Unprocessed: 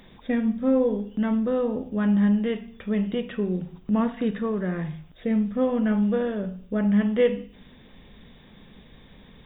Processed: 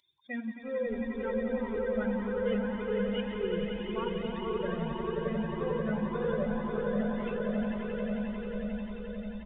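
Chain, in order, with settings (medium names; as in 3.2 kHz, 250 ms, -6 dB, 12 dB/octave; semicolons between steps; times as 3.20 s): expander on every frequency bin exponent 2; comb 2 ms, depth 40%; waveshaping leveller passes 1; bands offset in time highs, lows 610 ms, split 160 Hz; reverse; compression 6:1, threshold -35 dBFS, peak gain reduction 20 dB; reverse; resampled via 8 kHz; on a send: echo with a slow build-up 89 ms, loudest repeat 8, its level -6.5 dB; on the sum: Shepard-style flanger rising 1.8 Hz; trim +5.5 dB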